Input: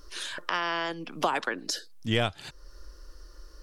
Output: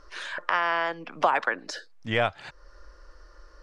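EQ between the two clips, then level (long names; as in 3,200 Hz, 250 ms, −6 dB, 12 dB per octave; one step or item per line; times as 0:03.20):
high-frequency loss of the air 110 metres
flat-topped bell 1,100 Hz +9 dB 2.5 octaves
high-shelf EQ 7,400 Hz +9 dB
−3.5 dB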